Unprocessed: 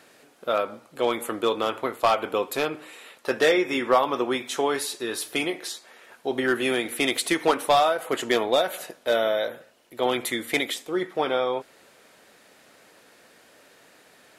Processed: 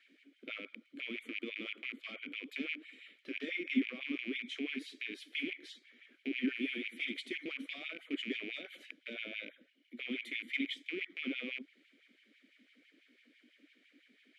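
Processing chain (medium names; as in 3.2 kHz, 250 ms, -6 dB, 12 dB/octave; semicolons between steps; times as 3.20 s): rattle on loud lows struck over -41 dBFS, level -17 dBFS; in parallel at -1.5 dB: compression, threshold -31 dBFS, peak gain reduction 16 dB; on the sum: peak limiter -13.5 dBFS, peak gain reduction 7 dB; vowel filter i; LFO high-pass sine 6 Hz 200–2700 Hz; trim -5.5 dB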